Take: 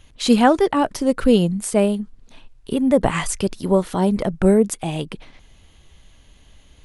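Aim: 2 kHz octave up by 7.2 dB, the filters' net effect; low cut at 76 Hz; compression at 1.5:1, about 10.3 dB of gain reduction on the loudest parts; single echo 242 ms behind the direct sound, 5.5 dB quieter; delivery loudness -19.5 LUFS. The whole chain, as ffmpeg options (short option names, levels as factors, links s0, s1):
-af "highpass=76,equalizer=f=2000:t=o:g=9,acompressor=threshold=0.0126:ratio=1.5,aecho=1:1:242:0.531,volume=2.24"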